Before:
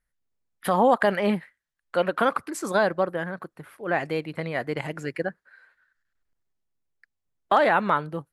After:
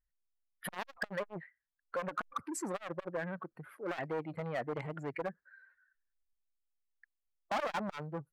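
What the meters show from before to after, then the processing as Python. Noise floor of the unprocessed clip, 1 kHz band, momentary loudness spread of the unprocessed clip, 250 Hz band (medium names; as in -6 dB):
-82 dBFS, -16.0 dB, 13 LU, -13.5 dB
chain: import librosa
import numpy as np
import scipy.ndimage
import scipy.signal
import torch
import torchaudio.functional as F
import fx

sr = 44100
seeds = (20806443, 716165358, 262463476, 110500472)

y = fx.spec_expand(x, sr, power=1.6)
y = np.clip(10.0 ** (22.5 / 20.0) * y, -1.0, 1.0) / 10.0 ** (22.5 / 20.0)
y = fx.transformer_sat(y, sr, knee_hz=550.0)
y = y * 10.0 ** (-5.0 / 20.0)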